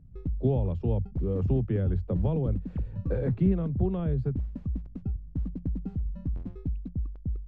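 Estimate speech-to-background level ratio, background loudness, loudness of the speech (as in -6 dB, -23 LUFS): 6.0 dB, -35.5 LUFS, -29.5 LUFS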